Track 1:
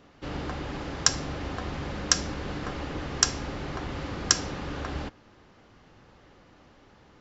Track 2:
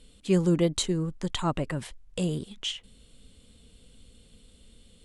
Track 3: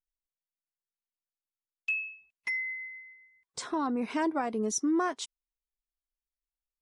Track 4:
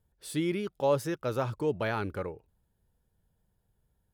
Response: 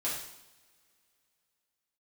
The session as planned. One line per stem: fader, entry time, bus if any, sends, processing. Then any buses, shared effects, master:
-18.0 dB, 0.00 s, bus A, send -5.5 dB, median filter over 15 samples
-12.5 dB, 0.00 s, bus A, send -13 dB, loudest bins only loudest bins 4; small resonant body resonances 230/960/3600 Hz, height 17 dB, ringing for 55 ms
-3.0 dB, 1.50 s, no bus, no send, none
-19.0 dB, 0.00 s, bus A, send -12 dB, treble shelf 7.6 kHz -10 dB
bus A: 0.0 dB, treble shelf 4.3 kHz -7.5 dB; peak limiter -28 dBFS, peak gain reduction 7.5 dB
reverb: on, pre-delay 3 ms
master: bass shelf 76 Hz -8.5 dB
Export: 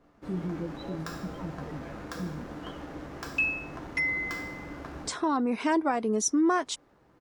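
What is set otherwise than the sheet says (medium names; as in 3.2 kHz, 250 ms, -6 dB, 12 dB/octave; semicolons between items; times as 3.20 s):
stem 1 -18.0 dB -> -8.5 dB; stem 3 -3.0 dB -> +4.0 dB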